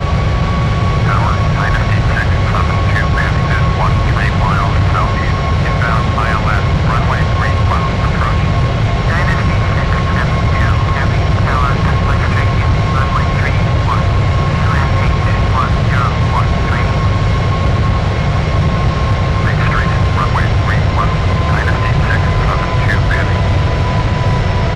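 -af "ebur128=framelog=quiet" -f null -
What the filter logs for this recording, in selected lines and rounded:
Integrated loudness:
  I:         -13.6 LUFS
  Threshold: -23.6 LUFS
Loudness range:
  LRA:         0.5 LU
  Threshold: -33.5 LUFS
  LRA low:   -13.8 LUFS
  LRA high:  -13.3 LUFS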